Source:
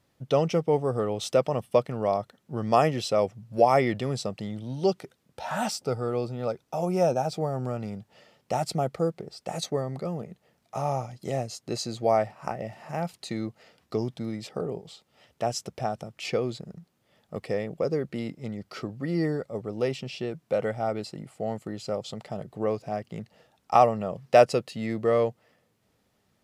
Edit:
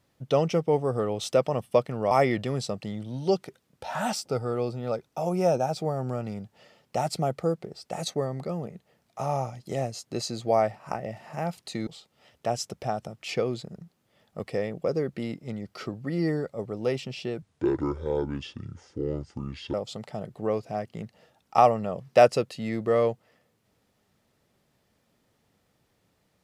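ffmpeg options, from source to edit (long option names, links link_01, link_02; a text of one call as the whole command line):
ffmpeg -i in.wav -filter_complex "[0:a]asplit=5[link_01][link_02][link_03][link_04][link_05];[link_01]atrim=end=2.112[link_06];[link_02]atrim=start=3.668:end=13.432[link_07];[link_03]atrim=start=14.828:end=20.384[link_08];[link_04]atrim=start=20.38:end=21.91,asetpts=PTS-STARTPTS,asetrate=29106,aresample=44100[link_09];[link_05]atrim=start=21.906[link_10];[link_06][link_07]acrossfade=duration=0.004:curve1=hsin:curve2=hsin[link_11];[link_11][link_08]acrossfade=duration=0.004:curve1=hsin:curve2=hsin[link_12];[link_12][link_09]acrossfade=duration=0.004:curve1=hsin:curve2=hsin[link_13];[link_13][link_10]acrossfade=duration=0.004:curve1=hsin:curve2=hsin" out.wav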